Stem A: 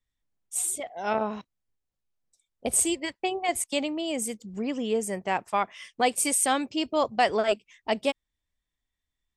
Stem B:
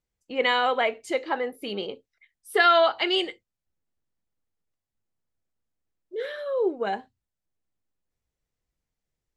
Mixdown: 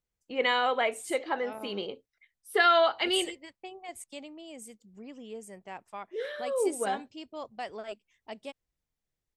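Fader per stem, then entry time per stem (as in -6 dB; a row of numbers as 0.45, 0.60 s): -15.5, -3.5 dB; 0.40, 0.00 s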